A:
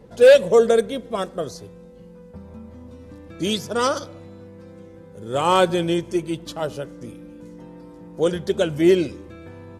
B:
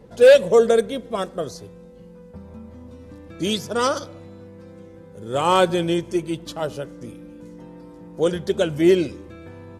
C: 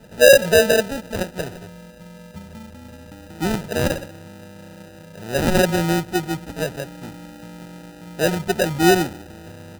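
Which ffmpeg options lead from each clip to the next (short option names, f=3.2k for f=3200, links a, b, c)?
-af anull
-filter_complex "[0:a]equalizer=f=170:t=o:w=0.43:g=5.5,acrossover=split=100[a][b];[b]acrusher=samples=40:mix=1:aa=0.000001[c];[a][c]amix=inputs=2:normalize=0"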